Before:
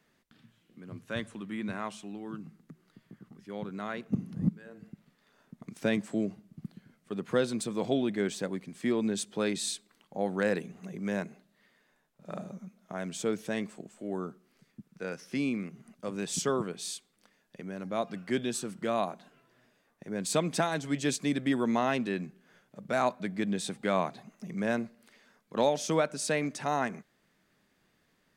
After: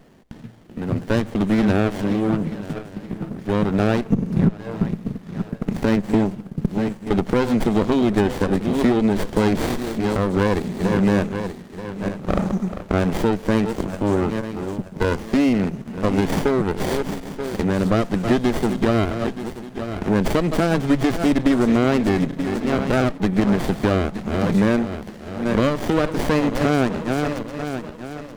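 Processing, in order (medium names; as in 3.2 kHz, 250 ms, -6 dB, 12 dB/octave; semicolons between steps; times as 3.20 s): backward echo that repeats 465 ms, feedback 52%, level -14 dB; compression 6:1, threshold -35 dBFS, peak gain reduction 14 dB; loudness maximiser +27 dB; sliding maximum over 33 samples; trim -5.5 dB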